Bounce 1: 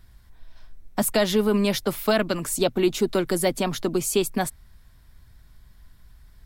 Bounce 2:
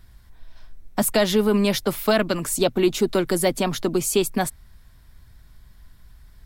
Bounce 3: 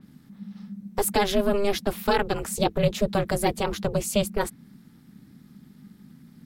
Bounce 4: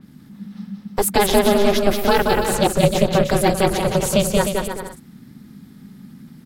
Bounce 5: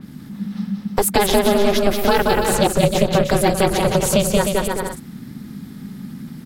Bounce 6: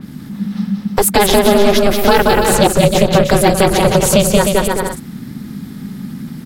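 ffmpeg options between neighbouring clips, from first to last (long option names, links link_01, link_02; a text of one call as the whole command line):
ffmpeg -i in.wav -af "acontrast=30,volume=-3dB" out.wav
ffmpeg -i in.wav -af "aeval=exprs='val(0)*sin(2*PI*200*n/s)':channel_layout=same,adynamicequalizer=threshold=0.00794:dfrequency=4300:dqfactor=0.7:tfrequency=4300:tqfactor=0.7:attack=5:release=100:ratio=0.375:range=2.5:mode=cutabove:tftype=highshelf" out.wav
ffmpeg -i in.wav -af "aecho=1:1:180|306|394.2|455.9|499.2:0.631|0.398|0.251|0.158|0.1,volume=5.5dB" out.wav
ffmpeg -i in.wav -af "acompressor=threshold=-26dB:ratio=2,volume=8dB" out.wav
ffmpeg -i in.wav -af "apsyclip=7.5dB,volume=-1.5dB" out.wav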